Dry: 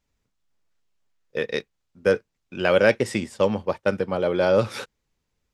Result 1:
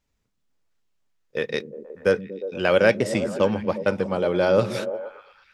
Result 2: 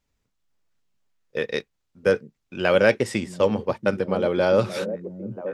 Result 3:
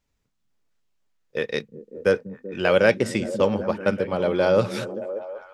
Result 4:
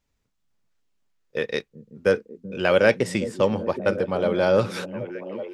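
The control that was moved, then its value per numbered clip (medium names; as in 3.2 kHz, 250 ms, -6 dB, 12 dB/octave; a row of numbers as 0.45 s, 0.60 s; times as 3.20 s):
repeats whose band climbs or falls, time: 119 ms, 682 ms, 193 ms, 382 ms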